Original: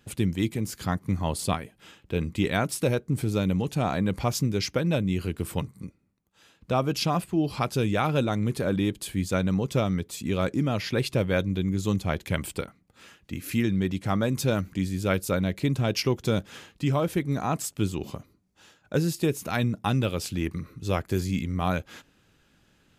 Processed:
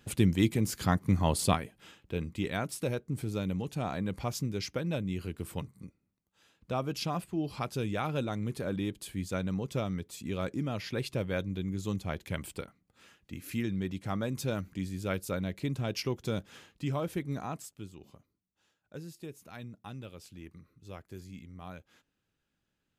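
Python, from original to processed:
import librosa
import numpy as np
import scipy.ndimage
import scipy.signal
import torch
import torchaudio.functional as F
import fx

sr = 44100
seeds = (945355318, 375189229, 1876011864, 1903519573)

y = fx.gain(x, sr, db=fx.line((1.47, 0.5), (2.3, -8.0), (17.37, -8.0), (17.88, -19.0)))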